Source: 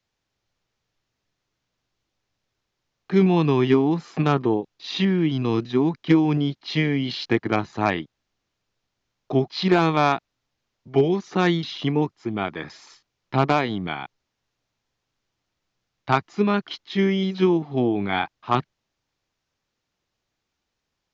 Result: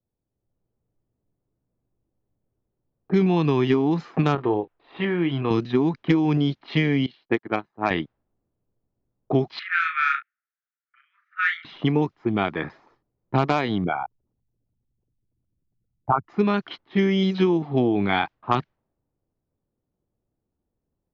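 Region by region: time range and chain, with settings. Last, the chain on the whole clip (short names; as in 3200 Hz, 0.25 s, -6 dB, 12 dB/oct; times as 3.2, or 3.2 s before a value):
4.35–5.51 LPF 2800 Hz + bell 200 Hz -10.5 dB 1.5 oct + doubler 29 ms -11 dB
7.06–7.91 bell 83 Hz -8 dB 2 oct + upward expander 2.5:1, over -34 dBFS
9.59–11.65 steep high-pass 1300 Hz 96 dB/oct + resonant high shelf 2900 Hz -13.5 dB, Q 1.5 + doubler 36 ms -7 dB
13.84–16.29 formant sharpening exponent 3 + LPF 2000 Hz
whole clip: compressor 4:1, threshold -22 dBFS; low-pass opened by the level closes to 450 Hz, open at -20.5 dBFS; AGC gain up to 5 dB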